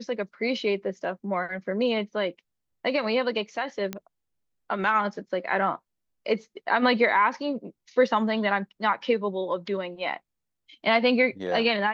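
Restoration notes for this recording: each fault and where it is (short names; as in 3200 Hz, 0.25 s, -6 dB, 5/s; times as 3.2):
3.93 pop -16 dBFS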